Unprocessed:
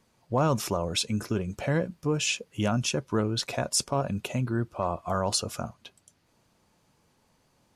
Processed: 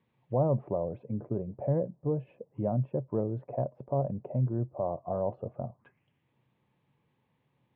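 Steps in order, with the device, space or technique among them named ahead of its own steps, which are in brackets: envelope filter bass rig (touch-sensitive low-pass 640–3900 Hz down, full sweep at -33 dBFS; cabinet simulation 81–2300 Hz, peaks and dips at 130 Hz +10 dB, 660 Hz -6 dB, 1.4 kHz -9 dB); trim -7 dB

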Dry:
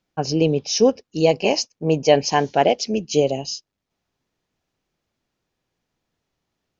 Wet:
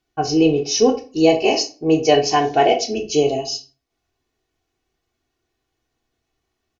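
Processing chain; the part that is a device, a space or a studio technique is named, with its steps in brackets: microphone above a desk (comb 2.7 ms, depth 73%; reverberation RT60 0.35 s, pre-delay 8 ms, DRR 3.5 dB); trim -1 dB

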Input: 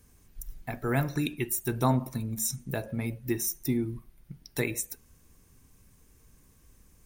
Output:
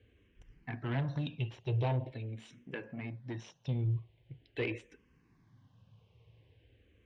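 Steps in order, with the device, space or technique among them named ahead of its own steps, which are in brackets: barber-pole phaser into a guitar amplifier (barber-pole phaser -0.44 Hz; saturation -30 dBFS, distortion -10 dB; cabinet simulation 83–3500 Hz, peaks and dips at 110 Hz +10 dB, 220 Hz -4 dB, 500 Hz +4 dB, 1.3 kHz -8 dB, 3 kHz +7 dB); 2.12–3.68 s: bass shelf 160 Hz -12 dB

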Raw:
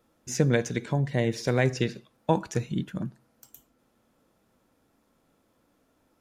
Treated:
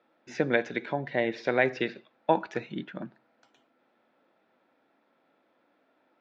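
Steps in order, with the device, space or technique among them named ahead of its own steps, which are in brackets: phone earpiece (cabinet simulation 400–3400 Hz, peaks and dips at 460 Hz -5 dB, 1.1 kHz -6 dB, 3 kHz -5 dB); trim +4.5 dB

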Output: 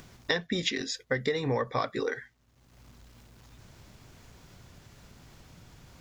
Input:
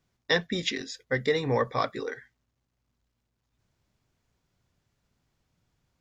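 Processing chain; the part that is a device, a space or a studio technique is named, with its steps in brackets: upward and downward compression (upward compressor, threshold -43 dBFS; compression 6:1, threshold -31 dBFS, peak gain reduction 11.5 dB); trim +5.5 dB

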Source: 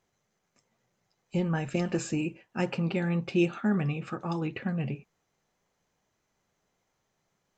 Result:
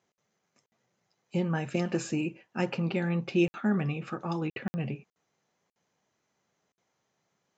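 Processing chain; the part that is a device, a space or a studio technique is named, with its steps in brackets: call with lost packets (high-pass 120 Hz 12 dB/octave; resampled via 16 kHz; lost packets of 60 ms)

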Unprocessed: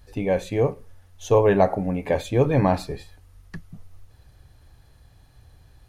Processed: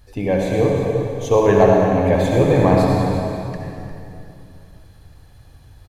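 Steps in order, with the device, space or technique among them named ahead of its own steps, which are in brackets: cave (delay 354 ms -13 dB; reverberation RT60 2.7 s, pre-delay 59 ms, DRR -1.5 dB); trim +2 dB

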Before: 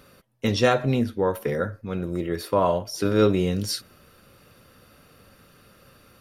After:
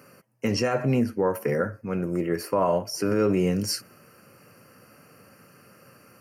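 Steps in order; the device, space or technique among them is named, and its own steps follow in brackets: PA system with an anti-feedback notch (high-pass 110 Hz 24 dB/octave; Butterworth band-stop 3.6 kHz, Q 2.1; peak limiter -15.5 dBFS, peak gain reduction 9.5 dB); trim +1.5 dB

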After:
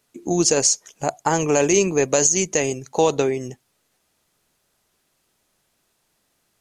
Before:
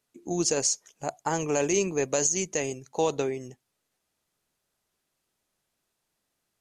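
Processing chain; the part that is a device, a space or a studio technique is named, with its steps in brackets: parallel compression (in parallel at -4 dB: compression, threshold -34 dBFS, peak gain reduction 13.5 dB); on the sum: trim +6.5 dB

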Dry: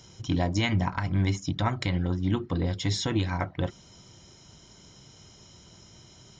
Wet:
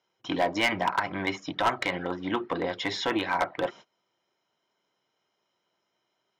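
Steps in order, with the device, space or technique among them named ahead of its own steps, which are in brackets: walkie-talkie (band-pass 520–2500 Hz; hard clipper -26.5 dBFS, distortion -11 dB; gate -53 dBFS, range -25 dB); trim +9 dB

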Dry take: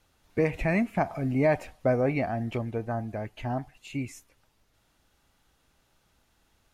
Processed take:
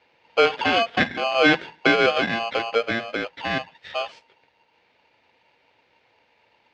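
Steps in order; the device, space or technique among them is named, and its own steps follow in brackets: 2.75–3.28 s: resonant low shelf 220 Hz -8.5 dB, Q 3; ring modulator pedal into a guitar cabinet (polarity switched at an audio rate 920 Hz; cabinet simulation 85–4100 Hz, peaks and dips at 490 Hz +9 dB, 1.1 kHz -9 dB, 2.2 kHz +7 dB); trim +5.5 dB

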